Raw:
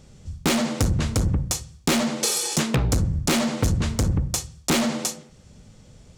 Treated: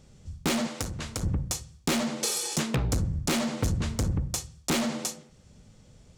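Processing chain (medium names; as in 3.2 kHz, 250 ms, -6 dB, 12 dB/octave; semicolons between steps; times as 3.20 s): 0.67–1.23 s: bass shelf 440 Hz -9.5 dB; trim -5.5 dB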